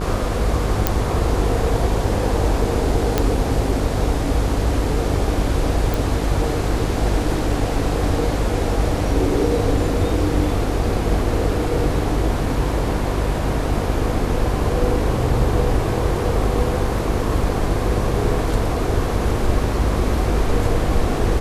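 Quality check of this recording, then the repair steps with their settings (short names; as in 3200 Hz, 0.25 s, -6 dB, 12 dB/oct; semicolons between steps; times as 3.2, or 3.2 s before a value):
buzz 50 Hz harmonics 19 -24 dBFS
0.87 pop -1 dBFS
3.18 pop -3 dBFS
5.94 pop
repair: de-click; de-hum 50 Hz, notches 19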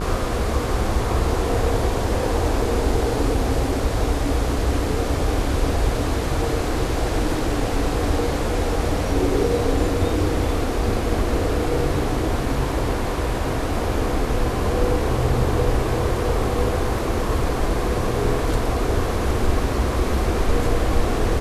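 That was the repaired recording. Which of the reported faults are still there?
none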